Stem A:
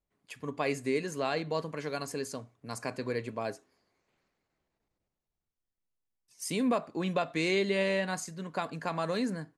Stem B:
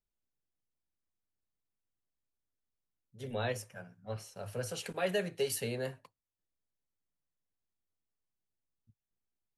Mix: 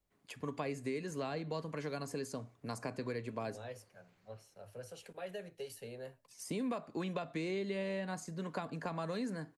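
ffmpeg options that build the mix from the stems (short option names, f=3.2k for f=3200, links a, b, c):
-filter_complex "[0:a]volume=3dB[a];[1:a]equalizer=f=560:w=1.3:g=5,adelay=200,volume=-13dB[b];[a][b]amix=inputs=2:normalize=0,acrossover=split=250|1100[c][d][e];[c]acompressor=threshold=-44dB:ratio=4[f];[d]acompressor=threshold=-41dB:ratio=4[g];[e]acompressor=threshold=-49dB:ratio=4[h];[f][g][h]amix=inputs=3:normalize=0"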